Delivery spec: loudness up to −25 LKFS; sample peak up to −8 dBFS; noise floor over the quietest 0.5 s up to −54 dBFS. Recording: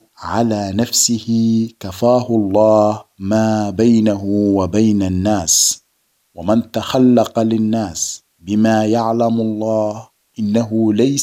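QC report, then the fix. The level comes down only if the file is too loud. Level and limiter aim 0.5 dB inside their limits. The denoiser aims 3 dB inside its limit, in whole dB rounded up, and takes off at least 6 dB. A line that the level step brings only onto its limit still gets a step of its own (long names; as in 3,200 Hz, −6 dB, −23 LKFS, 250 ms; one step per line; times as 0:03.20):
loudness −15.5 LKFS: out of spec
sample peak −2.0 dBFS: out of spec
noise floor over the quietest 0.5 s −64 dBFS: in spec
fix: level −10 dB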